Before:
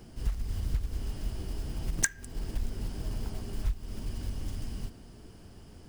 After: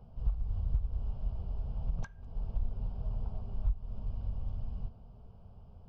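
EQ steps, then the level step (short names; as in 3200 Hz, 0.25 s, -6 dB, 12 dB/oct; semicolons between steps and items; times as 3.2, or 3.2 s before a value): air absorption 230 m; tape spacing loss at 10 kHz 28 dB; fixed phaser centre 770 Hz, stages 4; 0.0 dB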